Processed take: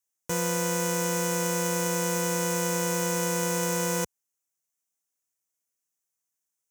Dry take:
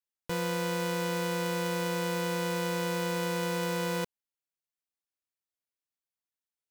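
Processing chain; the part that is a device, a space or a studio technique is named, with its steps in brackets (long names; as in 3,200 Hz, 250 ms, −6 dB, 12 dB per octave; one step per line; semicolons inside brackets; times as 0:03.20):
budget condenser microphone (high-pass filter 61 Hz; high shelf with overshoot 5,200 Hz +6.5 dB, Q 3)
level +3 dB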